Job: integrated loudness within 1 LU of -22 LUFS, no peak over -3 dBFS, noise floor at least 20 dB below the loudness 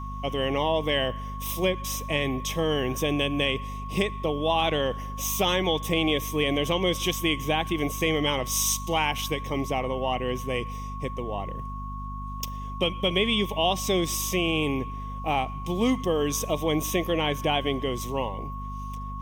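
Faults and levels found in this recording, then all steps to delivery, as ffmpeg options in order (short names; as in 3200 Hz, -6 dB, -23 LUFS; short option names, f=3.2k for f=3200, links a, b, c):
hum 50 Hz; harmonics up to 250 Hz; hum level -33 dBFS; steady tone 1100 Hz; tone level -37 dBFS; loudness -27.0 LUFS; peak -9.5 dBFS; loudness target -22.0 LUFS
-> -af "bandreject=f=50:t=h:w=4,bandreject=f=100:t=h:w=4,bandreject=f=150:t=h:w=4,bandreject=f=200:t=h:w=4,bandreject=f=250:t=h:w=4"
-af "bandreject=f=1.1k:w=30"
-af "volume=5dB"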